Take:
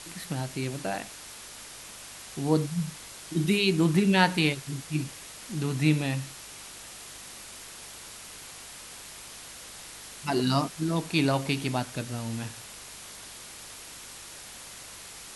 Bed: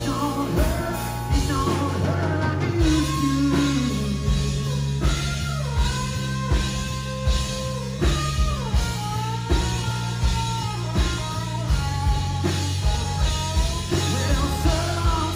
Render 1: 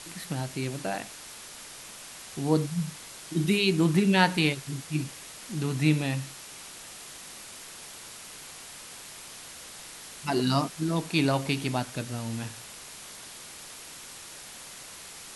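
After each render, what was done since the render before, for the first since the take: de-hum 50 Hz, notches 2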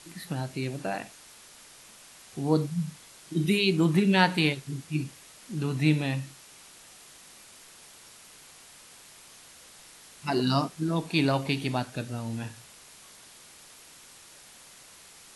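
noise print and reduce 7 dB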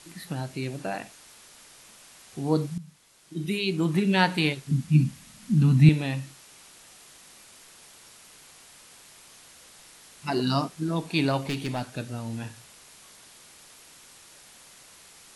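2.78–4.21 fade in, from -14 dB; 4.71–5.89 resonant low shelf 290 Hz +9 dB, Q 3; 11.46–11.97 hard clip -23 dBFS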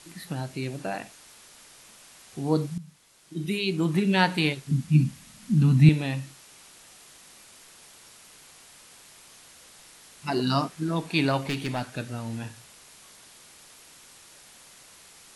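10.5–12.38 bell 1700 Hz +3.5 dB 1.4 oct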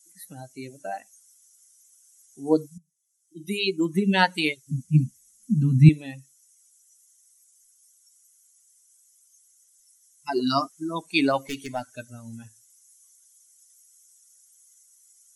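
per-bin expansion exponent 2; in parallel at -1 dB: vocal rider within 3 dB 0.5 s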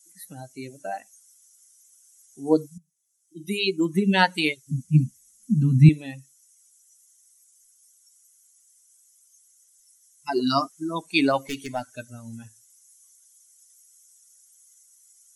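gain +1 dB; limiter -3 dBFS, peak gain reduction 2 dB

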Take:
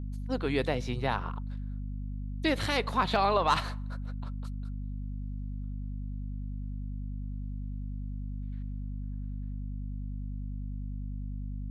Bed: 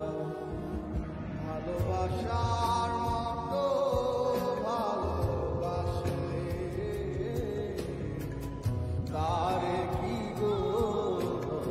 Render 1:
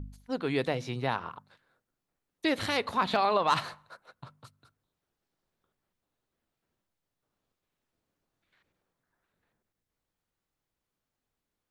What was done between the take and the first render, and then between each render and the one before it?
de-hum 50 Hz, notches 5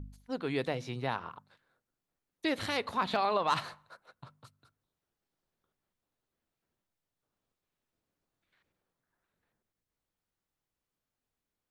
gain -3.5 dB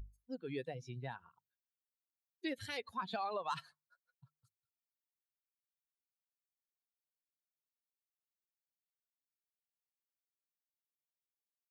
per-bin expansion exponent 2; compressor 1.5:1, threshold -47 dBFS, peak gain reduction 7.5 dB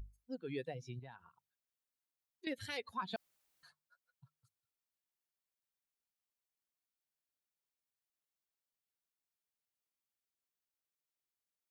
0.99–2.47 compressor 3:1, threshold -51 dBFS; 3.16–3.63 room tone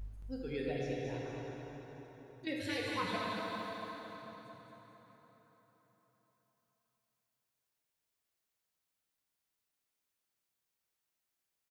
on a send: feedback echo 0.224 s, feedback 49%, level -5.5 dB; on the sum: plate-style reverb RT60 4.4 s, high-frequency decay 0.7×, DRR -4 dB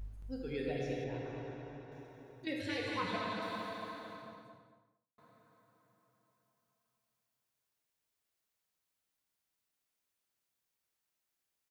1.04–1.92 air absorption 140 m; 2.61–3.42 air absorption 51 m; 4.07–5.18 studio fade out

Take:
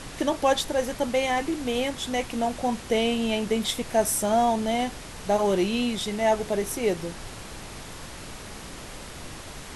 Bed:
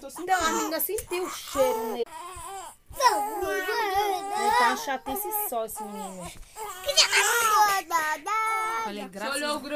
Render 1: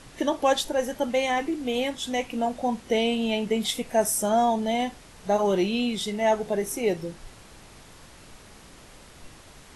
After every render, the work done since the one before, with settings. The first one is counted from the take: noise print and reduce 9 dB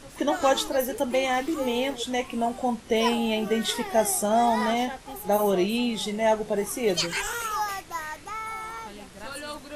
add bed -8 dB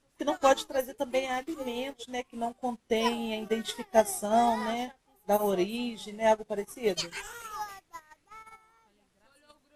in parallel at -2 dB: level quantiser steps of 17 dB; on the sum: upward expander 2.5:1, over -35 dBFS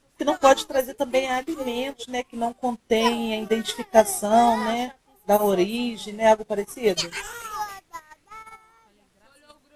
gain +7 dB

